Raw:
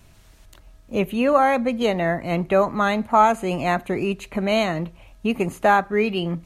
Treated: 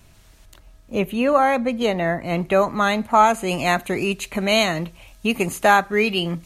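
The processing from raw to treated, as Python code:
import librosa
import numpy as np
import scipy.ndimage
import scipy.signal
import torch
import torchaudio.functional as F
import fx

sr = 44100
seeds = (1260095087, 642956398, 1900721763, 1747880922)

y = fx.high_shelf(x, sr, hz=2400.0, db=fx.steps((0.0, 2.0), (2.35, 7.0), (3.47, 12.0)))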